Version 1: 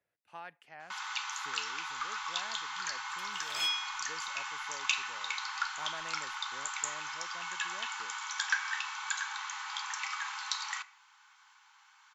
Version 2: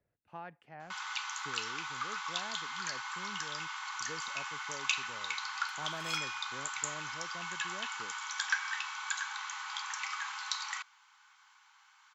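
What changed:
speech: add tilt -4 dB/oct; second sound: entry +2.50 s; reverb: off

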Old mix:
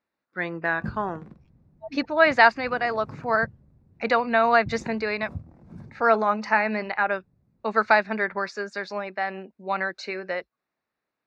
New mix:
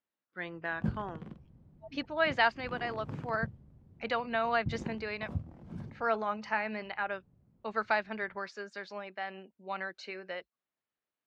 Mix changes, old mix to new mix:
speech -11.0 dB; master: add bell 3100 Hz +14.5 dB 0.22 oct

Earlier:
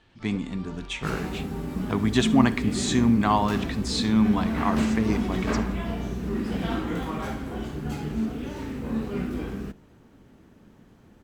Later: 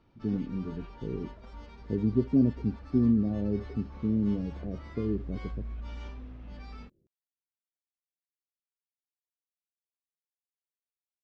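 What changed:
speech: add steep low-pass 530 Hz 48 dB/oct; second sound: muted; reverb: off

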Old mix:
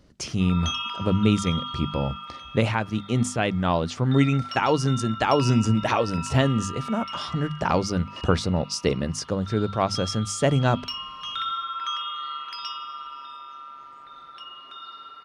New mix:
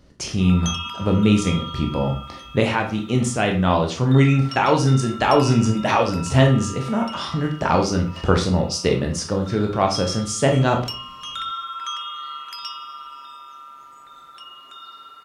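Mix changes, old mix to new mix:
background: remove polynomial smoothing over 15 samples; reverb: on, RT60 0.40 s

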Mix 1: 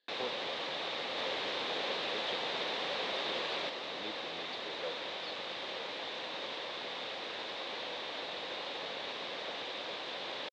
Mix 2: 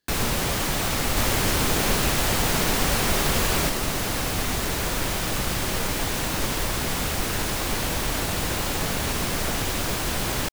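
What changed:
first sound +10.5 dB; second sound +11.5 dB; master: remove speaker cabinet 460–4000 Hz, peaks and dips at 520 Hz +6 dB, 1400 Hz -5 dB, 3700 Hz +9 dB

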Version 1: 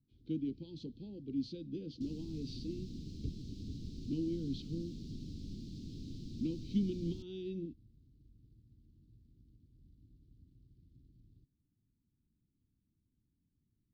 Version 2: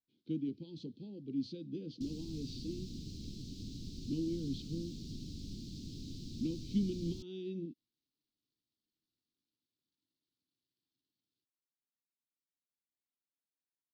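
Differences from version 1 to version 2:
first sound: add HPF 1200 Hz; second sound: add high shelf 3000 Hz +9.5 dB

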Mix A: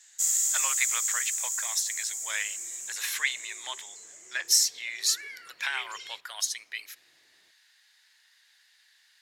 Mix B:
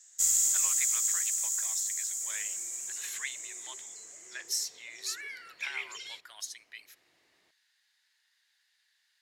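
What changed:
speech -10.5 dB; first sound: remove HPF 550 Hz 24 dB/oct

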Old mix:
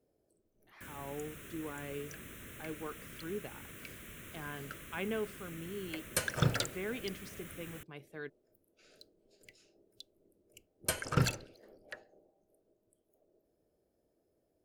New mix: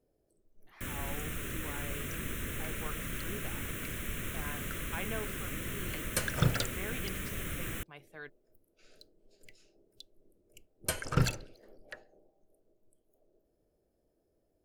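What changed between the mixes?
speech: add resonant low shelf 520 Hz -6 dB, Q 1.5; first sound +10.0 dB; master: remove HPF 94 Hz 6 dB/oct

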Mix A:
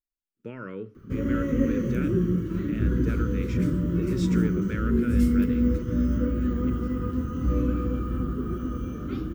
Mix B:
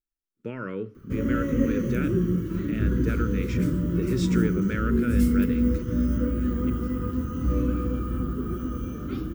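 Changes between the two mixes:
speech +4.0 dB; background: add high shelf 8400 Hz +9 dB

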